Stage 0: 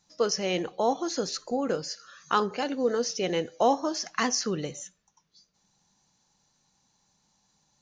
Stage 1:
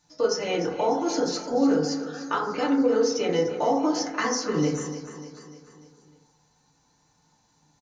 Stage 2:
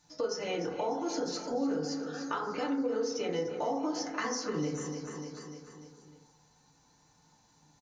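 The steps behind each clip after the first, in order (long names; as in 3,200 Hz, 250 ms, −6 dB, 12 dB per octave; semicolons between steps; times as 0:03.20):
downward compressor, threshold −28 dBFS, peak gain reduction 10.5 dB; on a send: repeating echo 297 ms, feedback 53%, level −12.5 dB; on the sum: feedback delay network reverb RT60 0.67 s, low-frequency decay 1.05×, high-frequency decay 0.25×, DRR −5 dB
downward compressor 2 to 1, threshold −37 dBFS, peak gain reduction 11 dB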